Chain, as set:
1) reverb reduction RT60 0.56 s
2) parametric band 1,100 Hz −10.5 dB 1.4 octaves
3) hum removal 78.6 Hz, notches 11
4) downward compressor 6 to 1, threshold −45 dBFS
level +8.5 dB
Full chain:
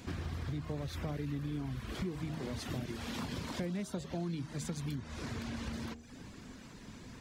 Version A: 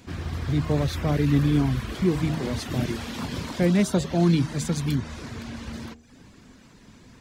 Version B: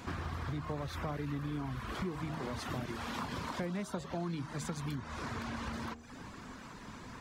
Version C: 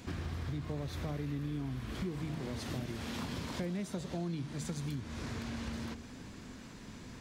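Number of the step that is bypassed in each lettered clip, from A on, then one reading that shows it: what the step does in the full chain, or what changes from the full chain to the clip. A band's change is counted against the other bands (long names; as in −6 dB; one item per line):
4, average gain reduction 9.5 dB
2, 1 kHz band +7.5 dB
1, change in momentary loudness spread −1 LU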